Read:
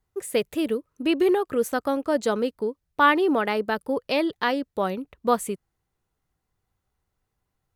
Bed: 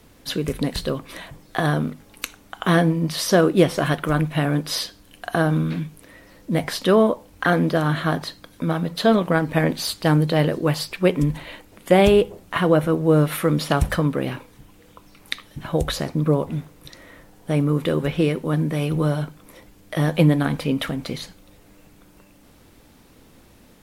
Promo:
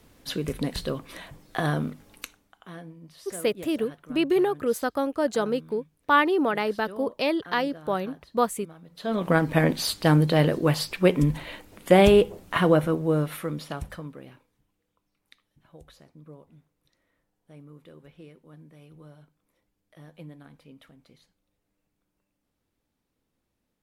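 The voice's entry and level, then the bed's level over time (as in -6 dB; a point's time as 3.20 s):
3.10 s, -1.5 dB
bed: 2.14 s -5 dB
2.66 s -25 dB
8.84 s -25 dB
9.30 s -1.5 dB
12.65 s -1.5 dB
14.88 s -28 dB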